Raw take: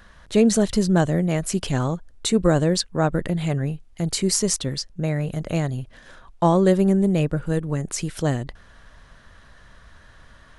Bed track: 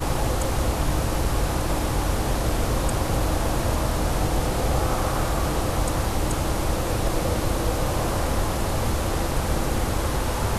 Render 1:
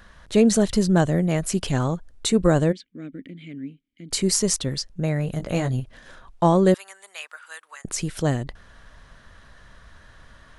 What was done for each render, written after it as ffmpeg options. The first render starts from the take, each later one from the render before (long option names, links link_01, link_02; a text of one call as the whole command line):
ffmpeg -i in.wav -filter_complex "[0:a]asplit=3[link_01][link_02][link_03];[link_01]afade=type=out:start_time=2.71:duration=0.02[link_04];[link_02]asplit=3[link_05][link_06][link_07];[link_05]bandpass=frequency=270:width_type=q:width=8,volume=0dB[link_08];[link_06]bandpass=frequency=2290:width_type=q:width=8,volume=-6dB[link_09];[link_07]bandpass=frequency=3010:width_type=q:width=8,volume=-9dB[link_10];[link_08][link_09][link_10]amix=inputs=3:normalize=0,afade=type=in:start_time=2.71:duration=0.02,afade=type=out:start_time=4.1:duration=0.02[link_11];[link_03]afade=type=in:start_time=4.1:duration=0.02[link_12];[link_04][link_11][link_12]amix=inputs=3:normalize=0,asettb=1/sr,asplit=3[link_13][link_14][link_15];[link_13]atrim=end=5.384[link_16];[link_14]atrim=start=5.38:end=5.8,asetpts=PTS-STARTPTS,afade=type=in:duration=0.004:curve=qsin,afade=type=out:start_time=0.416:duration=0.004:curve=qsin,asplit=2[link_17][link_18];[link_18]adelay=16,volume=-5dB[link_19];[link_17][link_19]amix=inputs=2:normalize=0,atrim=end_sample=18522[link_20];[link_15]atrim=start=5.796[link_21];[link_16][link_20]acrossfade=duration=0.004:curve1=hsin:curve2=qsin[link_22];[link_22][link_21]acrossfade=duration=0.004:curve1=qsin:curve2=hsin,asettb=1/sr,asplit=3[link_23][link_24][link_25];[link_23]atrim=end=6.744[link_26];[link_24]atrim=start=6.74:end=7.85,asetpts=PTS-STARTPTS,afade=type=in:duration=0.004:curve=qsin,afade=type=out:start_time=1.106:duration=0.004:curve=qsin,highpass=frequency=1100:width=0.5412,highpass=frequency=1100:width=1.3066[link_27];[link_25]atrim=start=7.846[link_28];[link_26][link_27]acrossfade=duration=0.004:curve1=hsin:curve2=qsin[link_29];[link_29][link_28]acrossfade=duration=0.004:curve1=qsin:curve2=hsin" out.wav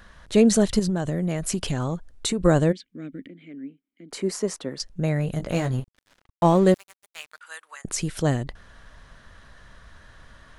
ffmpeg -i in.wav -filter_complex "[0:a]asettb=1/sr,asplit=3[link_01][link_02][link_03];[link_01]atrim=end=0.794[link_04];[link_02]atrim=start=0.79:end=2.42,asetpts=PTS-STARTPTS,afade=type=in:duration=0.004:curve=qsin,afade=type=out:start_time=1.626:duration=0.004:curve=qsin,acompressor=threshold=-20dB:ratio=12:attack=3.2:release=140:knee=1:detection=peak[link_05];[link_03]atrim=start=2.416[link_06];[link_04][link_05]acrossfade=duration=0.004:curve1=hsin:curve2=qsin[link_07];[link_07][link_06]acrossfade=duration=0.004:curve1=qsin:curve2=hsin,asettb=1/sr,asplit=3[link_08][link_09][link_10];[link_08]atrim=end=3.284[link_11];[link_09]atrim=start=3.28:end=4.8,asetpts=PTS-STARTPTS,afade=type=in:duration=0.004:curve=qsin,afade=type=out:start_time=1.516:duration=0.004:curve=qsin,acrossover=split=210 2000:gain=0.0708 1 0.224[link_12][link_13][link_14];[link_12][link_13][link_14]amix=inputs=3:normalize=0[link_15];[link_10]atrim=start=4.796[link_16];[link_11][link_15]acrossfade=duration=0.004:curve1=hsin:curve2=qsin[link_17];[link_17][link_16]acrossfade=duration=0.004:curve1=qsin:curve2=hsin,asettb=1/sr,asplit=3[link_18][link_19][link_20];[link_18]atrim=end=5.514[link_21];[link_19]atrim=start=5.51:end=7.41,asetpts=PTS-STARTPTS,afade=type=in:duration=0.004:curve=qsin,afade=type=out:start_time=1.896:duration=0.004:curve=qsin,aeval=exprs='sgn(val(0))*max(abs(val(0))-0.01,0)':channel_layout=same[link_22];[link_20]atrim=start=7.406[link_23];[link_21][link_22]acrossfade=duration=0.004:curve1=hsin:curve2=qsin[link_24];[link_24][link_23]acrossfade=duration=0.004:curve1=qsin:curve2=hsin" out.wav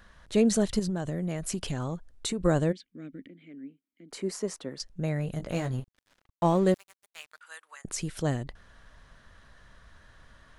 ffmpeg -i in.wav -af "volume=-6dB" out.wav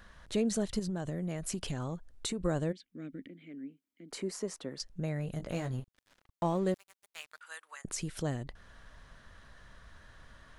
ffmpeg -i in.wav -af "acompressor=threshold=-40dB:ratio=1.5" out.wav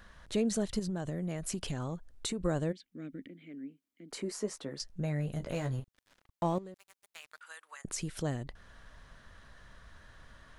ffmpeg -i in.wav -filter_complex "[0:a]asettb=1/sr,asplit=3[link_01][link_02][link_03];[link_01]atrim=end=4.224[link_04];[link_02]atrim=start=4.22:end=5.8,asetpts=PTS-STARTPTS,afade=type=in:duration=0.004:curve=qsin,afade=type=out:start_time=1.576:duration=0.004:curve=qsin,asplit=2[link_05][link_06];[link_06]adelay=14,volume=-8dB[link_07];[link_05][link_07]amix=inputs=2:normalize=0,atrim=end_sample=69678[link_08];[link_03]atrim=start=5.796[link_09];[link_04][link_08]acrossfade=duration=0.004:curve1=hsin:curve2=qsin[link_10];[link_10][link_09]acrossfade=duration=0.004:curve1=qsin:curve2=hsin,asettb=1/sr,asplit=3[link_11][link_12][link_13];[link_11]atrim=end=6.584[link_14];[link_12]atrim=start=6.58:end=7.85,asetpts=PTS-STARTPTS,afade=type=in:duration=0.004:curve=qsin,afade=type=out:start_time=1.266:duration=0.004:curve=qsin,acompressor=threshold=-42dB:ratio=20:attack=3.2:release=140:knee=1:detection=peak[link_15];[link_13]atrim=start=7.846[link_16];[link_14][link_15]acrossfade=duration=0.004:curve1=hsin:curve2=qsin[link_17];[link_17][link_16]acrossfade=duration=0.004:curve1=qsin:curve2=hsin" out.wav